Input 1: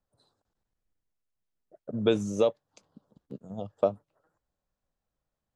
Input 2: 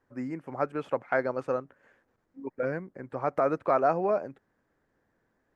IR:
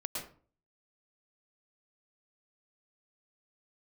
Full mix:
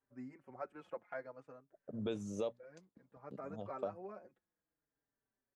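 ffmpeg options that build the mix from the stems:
-filter_complex "[0:a]bandreject=f=60:t=h:w=6,bandreject=f=120:t=h:w=6,bandreject=f=180:t=h:w=6,bandreject=f=240:t=h:w=6,agate=range=0.0224:threshold=0.00158:ratio=3:detection=peak,volume=0.335[s0];[1:a]asplit=2[s1][s2];[s2]adelay=4.6,afreqshift=-0.58[s3];[s1][s3]amix=inputs=2:normalize=1,volume=0.501,afade=t=out:st=0.9:d=0.74:silence=0.281838,afade=t=in:st=3.04:d=0.49:silence=0.446684[s4];[s0][s4]amix=inputs=2:normalize=0,alimiter=level_in=1.5:limit=0.0631:level=0:latency=1:release=260,volume=0.668"

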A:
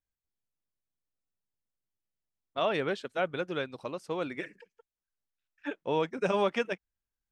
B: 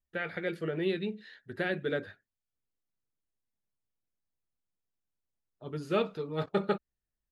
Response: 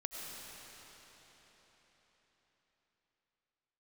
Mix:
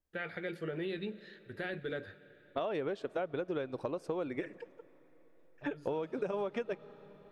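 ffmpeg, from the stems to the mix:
-filter_complex "[0:a]equalizer=f=360:t=o:w=2.6:g=11,acompressor=threshold=0.0355:ratio=2,adynamicequalizer=threshold=0.00501:dfrequency=2000:dqfactor=0.7:tfrequency=2000:tqfactor=0.7:attack=5:release=100:ratio=0.375:range=1.5:mode=cutabove:tftype=highshelf,volume=0.891,asplit=3[s0][s1][s2];[s1]volume=0.0708[s3];[1:a]alimiter=limit=0.0708:level=0:latency=1:release=30,volume=0.596,asplit=2[s4][s5];[s5]volume=0.178[s6];[s2]apad=whole_len=322554[s7];[s4][s7]sidechaincompress=threshold=0.00891:ratio=8:attack=5.8:release=390[s8];[2:a]atrim=start_sample=2205[s9];[s3][s6]amix=inputs=2:normalize=0[s10];[s10][s9]afir=irnorm=-1:irlink=0[s11];[s0][s8][s11]amix=inputs=3:normalize=0,asubboost=boost=6:cutoff=84,acompressor=threshold=0.0251:ratio=6"

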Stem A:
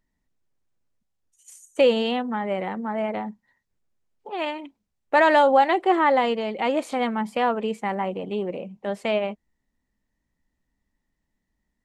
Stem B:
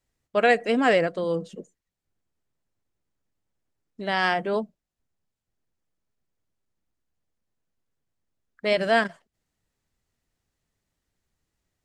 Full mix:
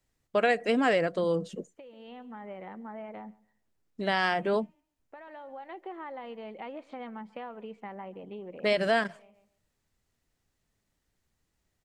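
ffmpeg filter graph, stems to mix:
-filter_complex "[0:a]lowpass=3000,acompressor=threshold=0.0562:ratio=12,volume=0.251,asplit=2[s0][s1];[s1]volume=0.0668[s2];[1:a]acompressor=threshold=0.0562:ratio=2.5,volume=1.12,asplit=2[s3][s4];[s4]apad=whole_len=522396[s5];[s0][s5]sidechaincompress=threshold=0.00891:ratio=5:attack=6.4:release=939[s6];[s2]aecho=0:1:140|280|420|560:1|0.23|0.0529|0.0122[s7];[s6][s3][s7]amix=inputs=3:normalize=0"

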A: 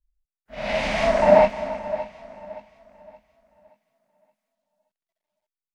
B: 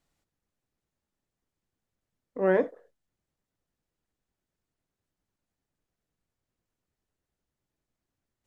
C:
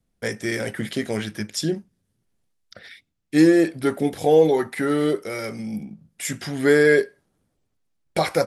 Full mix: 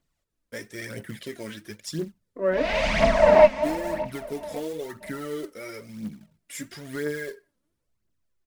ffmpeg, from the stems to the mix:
-filter_complex "[0:a]agate=range=0.282:threshold=0.00355:ratio=16:detection=peak,adelay=2000,volume=0.944[s0];[1:a]volume=0.794[s1];[2:a]acompressor=threshold=0.126:ratio=6,acrusher=bits=4:mode=log:mix=0:aa=0.000001,adelay=300,volume=0.299[s2];[s0][s1][s2]amix=inputs=3:normalize=0,aphaser=in_gain=1:out_gain=1:delay=4:decay=0.55:speed=0.99:type=triangular,asuperstop=centerf=780:order=4:qfactor=7.5"

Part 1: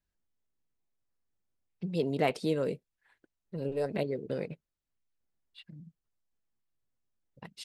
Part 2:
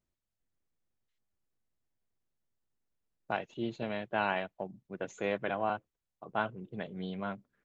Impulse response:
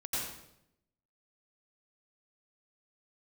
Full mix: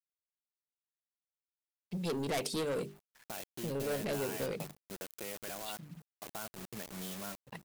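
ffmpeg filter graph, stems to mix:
-filter_complex "[0:a]bandreject=f=50:t=h:w=6,bandreject=f=100:t=h:w=6,bandreject=f=150:t=h:w=6,bandreject=f=200:t=h:w=6,bandreject=f=250:t=h:w=6,bandreject=f=300:t=h:w=6,bandreject=f=350:t=h:w=6,bandreject=f=400:t=h:w=6,asoftclip=type=tanh:threshold=0.0251,adelay=100,volume=1.12[s0];[1:a]alimiter=level_in=1.33:limit=0.0631:level=0:latency=1:release=10,volume=0.75,acompressor=threshold=0.00562:ratio=2.5,acrusher=bits=7:mix=0:aa=0.000001,volume=0.891[s1];[s0][s1]amix=inputs=2:normalize=0,crystalizer=i=2.5:c=0,acrusher=bits=9:mix=0:aa=0.000001"

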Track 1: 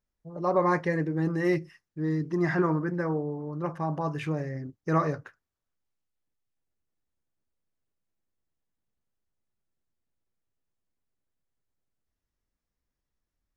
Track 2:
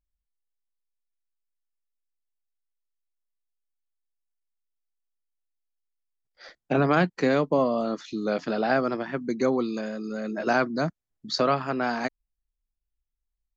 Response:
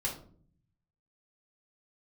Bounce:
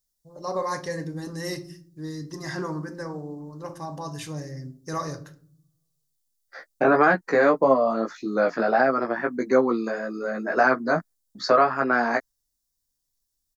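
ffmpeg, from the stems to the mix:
-filter_complex "[0:a]aexciter=amount=5.9:drive=7.2:freq=3600,volume=0.447,asplit=2[s0][s1];[s1]volume=0.422[s2];[1:a]firequalizer=gain_entry='entry(120,0);entry(190,5);entry(470,11);entry(1700,15);entry(3000,-3);entry(4900,5)':delay=0.05:min_phase=1,agate=range=0.00891:threshold=0.0158:ratio=16:detection=peak,flanger=delay=15:depth=2.5:speed=1.7,adelay=100,volume=0.708[s3];[2:a]atrim=start_sample=2205[s4];[s2][s4]afir=irnorm=-1:irlink=0[s5];[s0][s3][s5]amix=inputs=3:normalize=0,alimiter=limit=0.447:level=0:latency=1:release=399"

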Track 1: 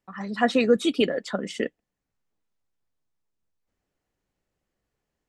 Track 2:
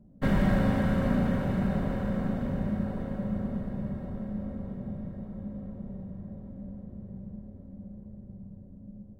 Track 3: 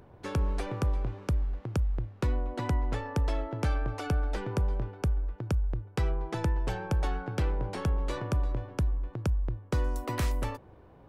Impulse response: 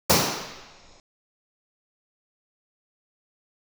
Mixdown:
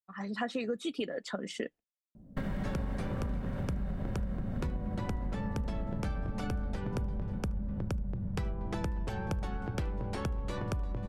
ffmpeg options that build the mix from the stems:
-filter_complex "[0:a]agate=range=0.0224:threshold=0.0126:ratio=3:detection=peak,volume=0.562[s0];[1:a]asubboost=boost=3:cutoff=180,acompressor=threshold=0.0447:ratio=6,adelay=2150,volume=1.19[s1];[2:a]adelay=2400,volume=1.06,asplit=2[s2][s3];[s3]volume=0.0841,aecho=0:1:544:1[s4];[s0][s1][s2][s4]amix=inputs=4:normalize=0,acompressor=threshold=0.0282:ratio=6"

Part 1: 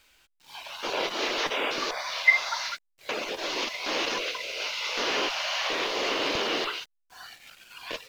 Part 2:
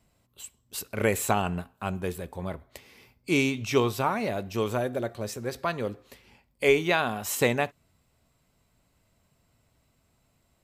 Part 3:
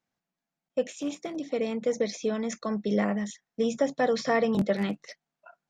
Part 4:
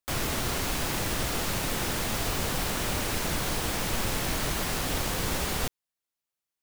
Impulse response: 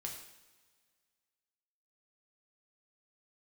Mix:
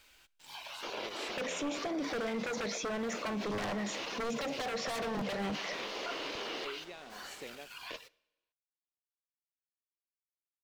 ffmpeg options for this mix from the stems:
-filter_complex "[0:a]acompressor=threshold=0.00562:ratio=2,volume=0.841,asplit=2[s0][s1];[s1]volume=0.141[s2];[1:a]equalizer=f=1300:t=o:w=2.8:g=-14.5,acrusher=bits=6:mix=0:aa=0.000001,volume=0.299[s3];[2:a]equalizer=f=900:w=0.45:g=12,adelay=600,volume=1.26,asplit=2[s4][s5];[s5]volume=0.133[s6];[3:a]adelay=1900,volume=0.1,asplit=2[s7][s8];[s8]volume=0.126[s9];[s0][s4]amix=inputs=2:normalize=0,aeval=exprs='0.112*(abs(mod(val(0)/0.112+3,4)-2)-1)':c=same,alimiter=level_in=1.58:limit=0.0631:level=0:latency=1:release=13,volume=0.631,volume=1[s10];[s3][s7]amix=inputs=2:normalize=0,highpass=350,lowpass=5100,acompressor=threshold=0.00501:ratio=2,volume=1[s11];[4:a]atrim=start_sample=2205[s12];[s2][s6][s9]amix=inputs=3:normalize=0[s13];[s13][s12]afir=irnorm=-1:irlink=0[s14];[s10][s11][s14]amix=inputs=3:normalize=0,alimiter=level_in=1.78:limit=0.0631:level=0:latency=1:release=16,volume=0.562"

